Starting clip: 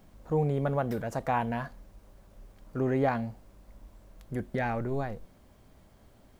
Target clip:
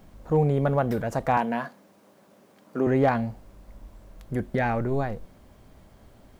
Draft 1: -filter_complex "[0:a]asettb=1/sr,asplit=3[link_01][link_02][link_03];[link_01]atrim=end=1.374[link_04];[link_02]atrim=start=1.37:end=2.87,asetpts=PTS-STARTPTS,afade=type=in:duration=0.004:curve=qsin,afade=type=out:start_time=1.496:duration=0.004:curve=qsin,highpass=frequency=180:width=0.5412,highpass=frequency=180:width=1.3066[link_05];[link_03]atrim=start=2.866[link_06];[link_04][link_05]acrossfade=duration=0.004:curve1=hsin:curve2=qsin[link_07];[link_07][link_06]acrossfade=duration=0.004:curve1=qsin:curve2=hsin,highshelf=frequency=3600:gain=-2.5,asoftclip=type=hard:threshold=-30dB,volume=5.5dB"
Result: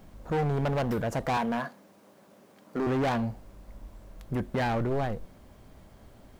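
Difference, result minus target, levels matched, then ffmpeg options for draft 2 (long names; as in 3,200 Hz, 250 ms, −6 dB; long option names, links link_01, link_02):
hard clipping: distortion +29 dB
-filter_complex "[0:a]asettb=1/sr,asplit=3[link_01][link_02][link_03];[link_01]atrim=end=1.374[link_04];[link_02]atrim=start=1.37:end=2.87,asetpts=PTS-STARTPTS,afade=type=in:duration=0.004:curve=qsin,afade=type=out:start_time=1.496:duration=0.004:curve=qsin,highpass=frequency=180:width=0.5412,highpass=frequency=180:width=1.3066[link_05];[link_03]atrim=start=2.866[link_06];[link_04][link_05]acrossfade=duration=0.004:curve1=hsin:curve2=qsin[link_07];[link_07][link_06]acrossfade=duration=0.004:curve1=qsin:curve2=hsin,highshelf=frequency=3600:gain=-2.5,asoftclip=type=hard:threshold=-18.5dB,volume=5.5dB"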